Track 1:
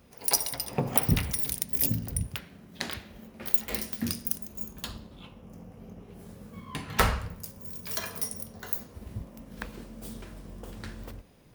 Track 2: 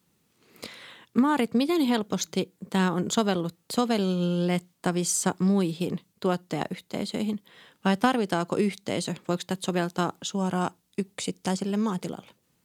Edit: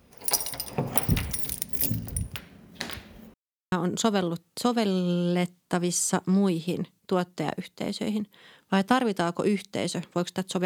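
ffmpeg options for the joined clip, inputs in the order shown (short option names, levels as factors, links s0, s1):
-filter_complex "[0:a]apad=whole_dur=10.65,atrim=end=10.65,asplit=2[s0][s1];[s0]atrim=end=3.34,asetpts=PTS-STARTPTS,afade=t=out:st=3.336:d=0.004:c=hsin[s2];[s1]atrim=start=3.34:end=3.72,asetpts=PTS-STARTPTS,volume=0[s3];[1:a]atrim=start=2.85:end=9.78,asetpts=PTS-STARTPTS,afade=t=in:d=0.004:c=hsin[s4];[s2][s3][s4]concat=n=3:v=0:a=1"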